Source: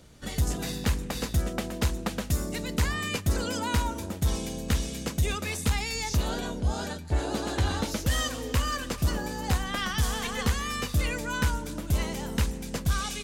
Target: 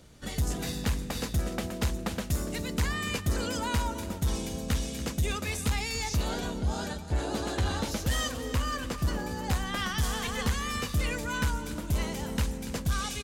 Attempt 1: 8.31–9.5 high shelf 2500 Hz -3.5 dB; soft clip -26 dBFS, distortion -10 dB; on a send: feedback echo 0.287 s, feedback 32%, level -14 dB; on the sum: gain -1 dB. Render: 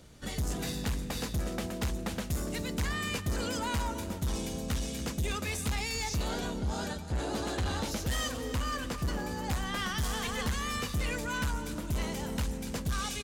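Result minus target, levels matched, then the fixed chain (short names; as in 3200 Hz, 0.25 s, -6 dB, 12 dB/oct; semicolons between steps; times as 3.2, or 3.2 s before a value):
soft clip: distortion +10 dB
8.31–9.5 high shelf 2500 Hz -3.5 dB; soft clip -18 dBFS, distortion -20 dB; on a send: feedback echo 0.287 s, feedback 32%, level -14 dB; on the sum: gain -1 dB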